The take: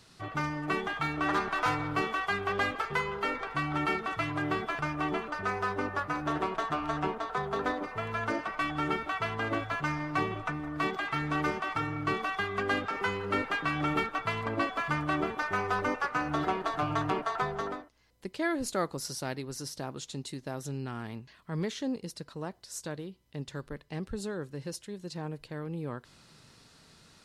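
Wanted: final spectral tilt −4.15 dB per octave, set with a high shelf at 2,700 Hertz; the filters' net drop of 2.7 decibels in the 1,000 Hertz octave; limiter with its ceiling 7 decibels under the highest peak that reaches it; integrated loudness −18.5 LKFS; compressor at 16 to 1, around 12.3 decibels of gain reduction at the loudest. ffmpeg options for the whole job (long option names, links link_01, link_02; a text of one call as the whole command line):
ffmpeg -i in.wav -af "equalizer=frequency=1000:width_type=o:gain=-5,highshelf=frequency=2700:gain=8,acompressor=threshold=-38dB:ratio=16,volume=25dB,alimiter=limit=-8dB:level=0:latency=1" out.wav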